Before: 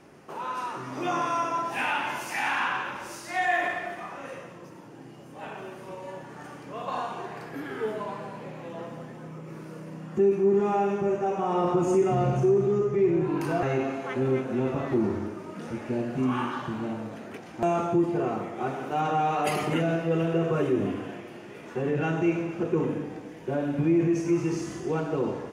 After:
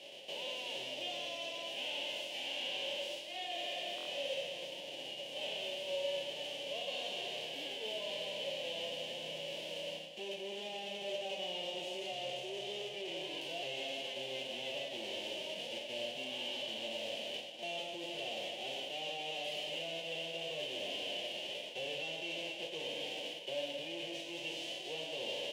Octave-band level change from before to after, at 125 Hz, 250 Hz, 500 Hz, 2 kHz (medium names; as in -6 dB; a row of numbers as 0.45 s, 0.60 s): -28.5 dB, -24.0 dB, -14.0 dB, -9.5 dB